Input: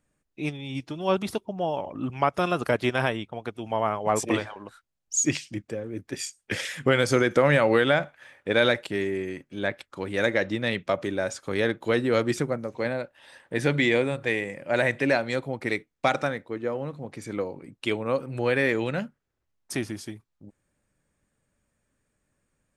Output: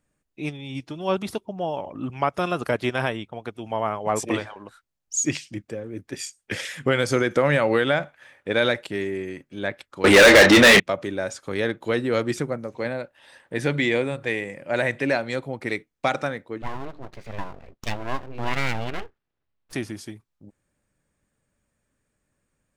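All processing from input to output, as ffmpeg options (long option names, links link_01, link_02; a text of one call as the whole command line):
ffmpeg -i in.wav -filter_complex "[0:a]asettb=1/sr,asplit=3[link_01][link_02][link_03];[link_01]atrim=end=10.044[link_04];[link_02]atrim=start=10.04:end=10.8,asetpts=PTS-STARTPTS,afade=type=in:duration=0.004:curve=qsin,afade=type=out:start_time=0.756:duration=0.004:curve=qsin,asplit=2[link_05][link_06];[link_06]adelay=30,volume=-10dB[link_07];[link_05][link_07]amix=inputs=2:normalize=0,atrim=end_sample=33516,acontrast=27,asplit=2[link_08][link_09];[link_09]highpass=frequency=720:poles=1,volume=32dB,asoftclip=type=tanh:threshold=-4dB[link_10];[link_08][link_10]amix=inputs=2:normalize=0,lowpass=frequency=6800:poles=1,volume=-6dB[link_11];[link_03]atrim=start=10.796[link_12];[link_04][link_11]acrossfade=duration=0.004:curve1=hsin:curve2=qsin[link_13];[link_13][link_12]acrossfade=duration=0.004:curve1=qsin:curve2=hsin,asettb=1/sr,asplit=3[link_14][link_15][link_16];[link_14]atrim=end=16.624[link_17];[link_15]atrim=start=16.62:end=19.73,asetpts=PTS-STARTPTS,afade=type=in:duration=0.004:curve=qsin,afade=type=out:start_time=3.106:duration=0.004:curve=qsin,lowpass=frequency=4300:width=0.5412,lowpass=frequency=4300:width=1.3066,aeval=exprs='abs(val(0))':channel_layout=same[link_18];[link_16]atrim=start=19.726[link_19];[link_17][link_18]acrossfade=duration=0.004:curve1=hsin:curve2=qsin[link_20];[link_20][link_19]acrossfade=duration=0.004:curve1=qsin:curve2=hsin" out.wav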